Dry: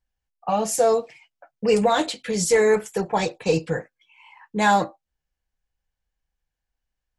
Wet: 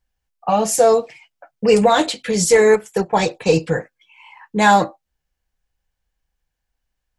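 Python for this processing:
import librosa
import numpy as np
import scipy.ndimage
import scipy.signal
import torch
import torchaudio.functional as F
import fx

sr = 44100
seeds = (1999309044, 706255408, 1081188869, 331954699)

y = fx.transient(x, sr, attack_db=0, sustain_db=-8, at=(2.46, 3.13))
y = F.gain(torch.from_numpy(y), 5.5).numpy()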